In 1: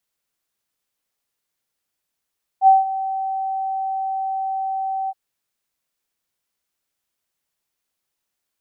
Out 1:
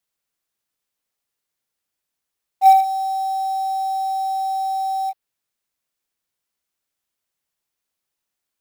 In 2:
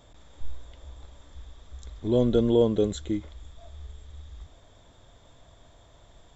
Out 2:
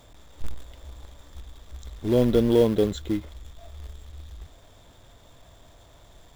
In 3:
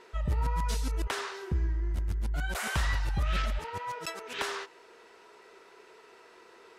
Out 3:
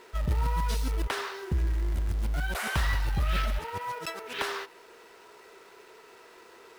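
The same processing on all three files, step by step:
in parallel at −5 dB: log-companded quantiser 4 bits
on the sum: dynamic equaliser 7,100 Hz, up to −5 dB, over −52 dBFS, Q 1.8
level −2 dB

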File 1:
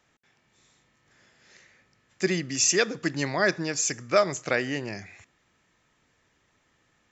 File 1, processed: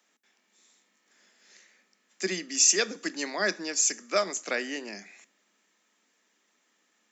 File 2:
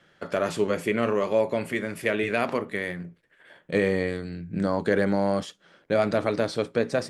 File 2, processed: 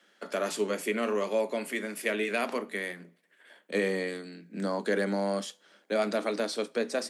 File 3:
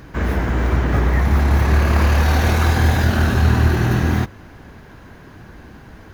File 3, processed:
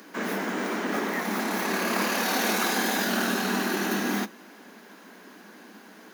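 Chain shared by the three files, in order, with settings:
Butterworth high-pass 190 Hz 72 dB per octave
high-shelf EQ 3,900 Hz +10.5 dB
coupled-rooms reverb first 0.28 s, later 2.1 s, from −27 dB, DRR 17 dB
level −5.5 dB

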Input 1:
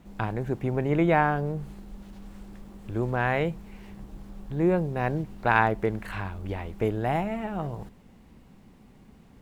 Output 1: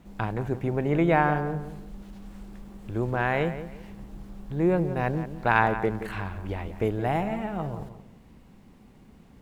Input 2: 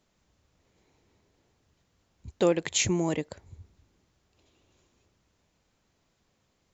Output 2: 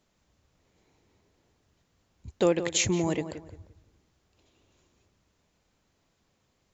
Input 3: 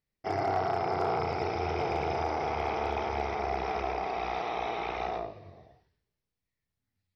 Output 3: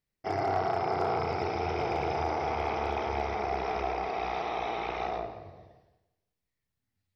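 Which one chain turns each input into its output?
feedback echo with a low-pass in the loop 174 ms, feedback 28%, low-pass 2,300 Hz, level −11 dB

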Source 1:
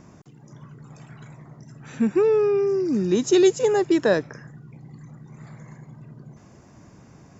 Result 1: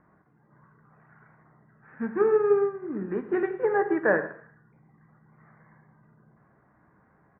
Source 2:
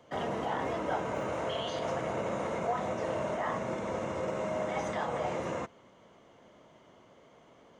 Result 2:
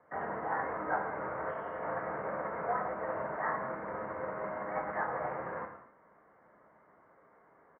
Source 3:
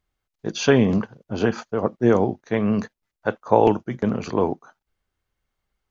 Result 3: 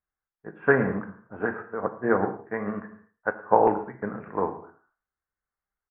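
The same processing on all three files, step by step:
Butterworth low-pass 1,800 Hz 48 dB per octave
tilt shelving filter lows −8.5 dB, about 940 Hz
single-tap delay 112 ms −17.5 dB
reverb whose tail is shaped and stops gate 270 ms falling, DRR 4 dB
expander for the loud parts 1.5 to 1, over −37 dBFS
level +1 dB

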